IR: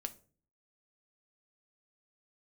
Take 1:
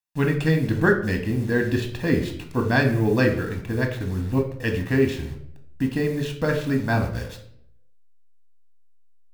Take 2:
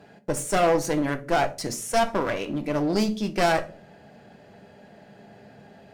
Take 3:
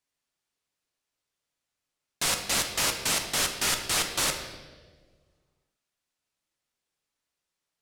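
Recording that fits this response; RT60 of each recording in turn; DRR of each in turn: 2; 0.65, 0.40, 1.5 s; 3.5, 7.0, 4.0 dB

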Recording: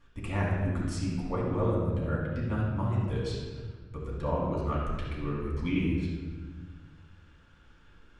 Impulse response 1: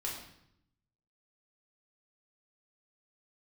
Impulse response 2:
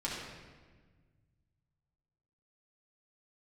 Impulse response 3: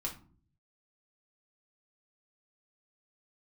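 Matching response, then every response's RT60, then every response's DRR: 2; 0.75, 1.5, 0.45 s; -4.0, -6.0, -1.5 dB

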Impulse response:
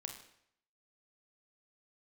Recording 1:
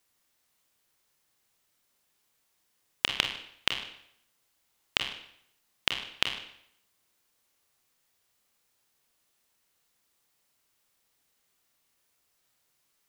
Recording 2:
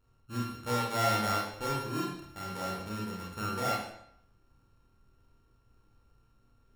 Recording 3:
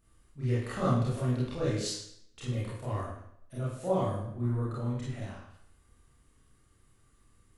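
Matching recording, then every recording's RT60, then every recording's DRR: 1; 0.70, 0.70, 0.70 s; 4.0, -4.0, -9.0 dB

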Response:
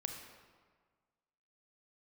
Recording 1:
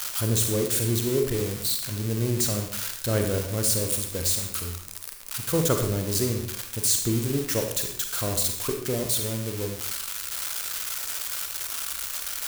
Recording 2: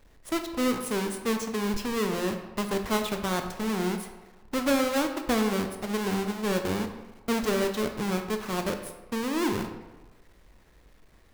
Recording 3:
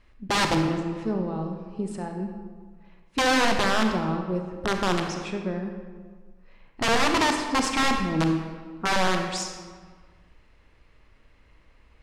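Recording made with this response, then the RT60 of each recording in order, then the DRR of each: 3; 0.65, 1.1, 1.6 s; 3.5, 5.5, 3.5 dB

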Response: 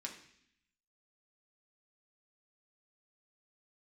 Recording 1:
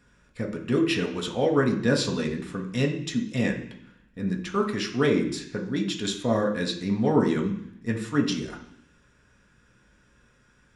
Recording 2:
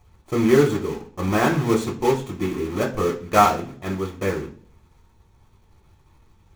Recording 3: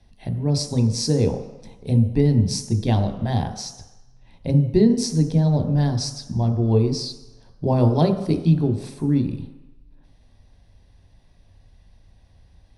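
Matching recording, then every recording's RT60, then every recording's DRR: 1; 0.65, 0.45, 1.0 s; 0.0, -1.0, 6.0 dB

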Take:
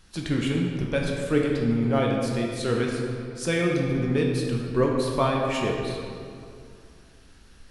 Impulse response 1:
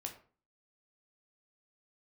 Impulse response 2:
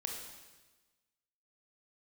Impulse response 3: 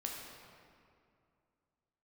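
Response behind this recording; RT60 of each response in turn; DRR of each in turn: 3; 0.40, 1.2, 2.4 s; 2.5, 1.0, -1.5 dB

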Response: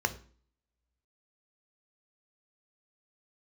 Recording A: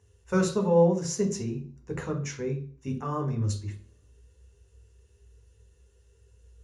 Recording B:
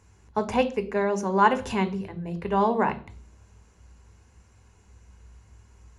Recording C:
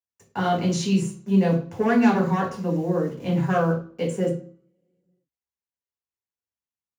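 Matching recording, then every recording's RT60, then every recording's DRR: B; 0.45, 0.45, 0.45 s; 2.5, 8.5, -2.0 dB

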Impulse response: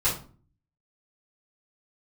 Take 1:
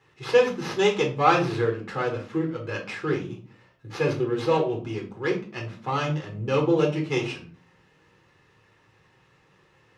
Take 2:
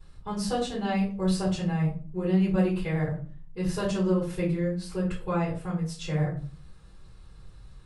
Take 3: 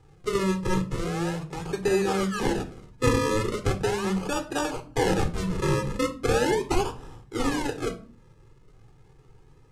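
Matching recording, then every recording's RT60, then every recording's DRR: 2; 0.40, 0.40, 0.45 s; -1.5, -10.5, 6.0 dB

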